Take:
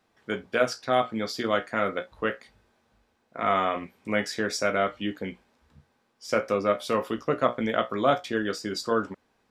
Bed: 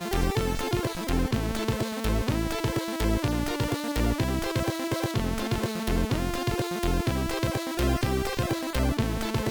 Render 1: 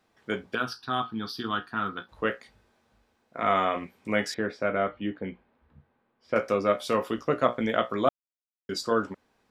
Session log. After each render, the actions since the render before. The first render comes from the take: 0.55–2.09 s: static phaser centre 2.1 kHz, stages 6; 4.34–6.36 s: distance through air 440 m; 8.09–8.69 s: mute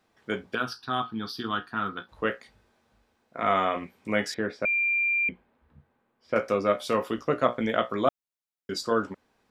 4.65–5.29 s: bleep 2.38 kHz -22 dBFS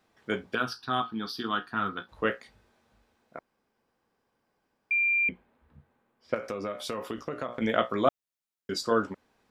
1.00–1.67 s: peaking EQ 100 Hz -9 dB; 3.39–4.91 s: room tone; 6.34–7.62 s: compression 8:1, threshold -29 dBFS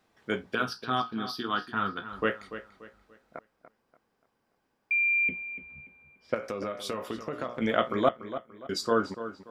filtered feedback delay 290 ms, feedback 35%, low-pass 4.6 kHz, level -12 dB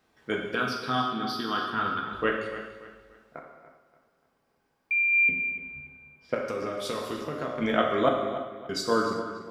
gated-style reverb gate 420 ms falling, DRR 1 dB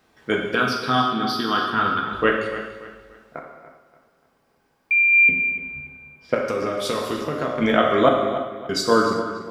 trim +7.5 dB; peak limiter -3 dBFS, peak gain reduction 2 dB

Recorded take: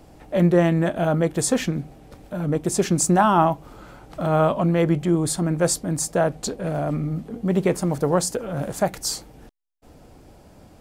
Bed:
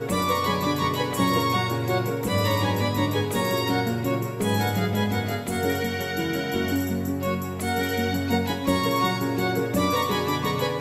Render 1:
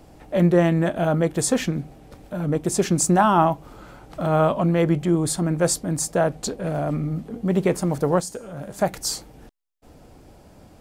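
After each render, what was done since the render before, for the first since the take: 8.20–8.79 s: feedback comb 200 Hz, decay 0.6 s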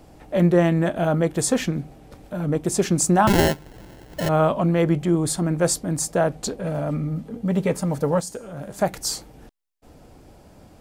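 3.27–4.29 s: sample-rate reducer 1.2 kHz; 6.62–8.27 s: comb of notches 360 Hz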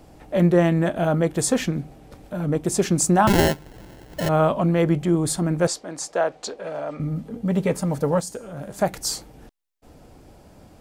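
5.67–7.00 s: three-band isolator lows -20 dB, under 360 Hz, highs -19 dB, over 7.2 kHz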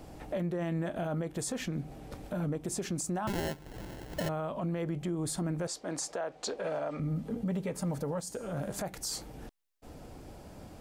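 compression 4:1, threshold -30 dBFS, peak gain reduction 14.5 dB; peak limiter -26 dBFS, peak gain reduction 8 dB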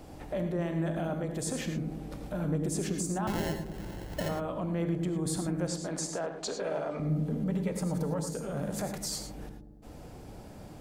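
feedback echo behind a low-pass 99 ms, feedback 69%, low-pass 500 Hz, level -7 dB; gated-style reverb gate 130 ms rising, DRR 6.5 dB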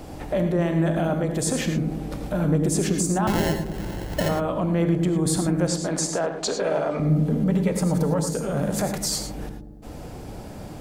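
trim +9.5 dB

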